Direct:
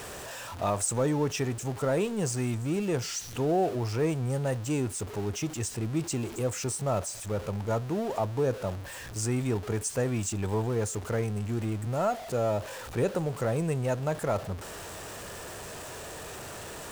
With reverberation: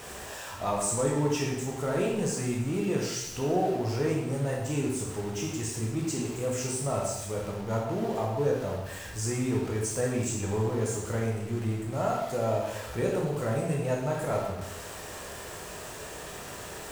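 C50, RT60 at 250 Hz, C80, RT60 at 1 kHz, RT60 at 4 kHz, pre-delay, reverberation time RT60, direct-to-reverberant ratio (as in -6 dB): 1.5 dB, 0.85 s, 4.5 dB, 0.85 s, 0.85 s, 7 ms, 0.85 s, -3.0 dB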